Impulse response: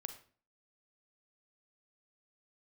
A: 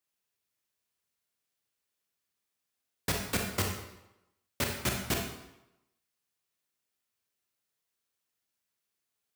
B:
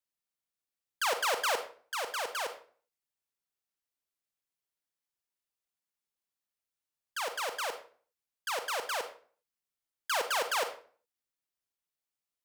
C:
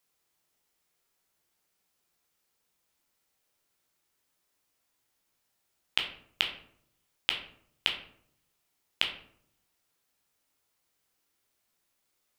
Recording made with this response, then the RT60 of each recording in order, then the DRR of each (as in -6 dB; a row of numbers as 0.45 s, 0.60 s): B; 0.90 s, 0.45 s, 0.65 s; 1.0 dB, 7.5 dB, 1.5 dB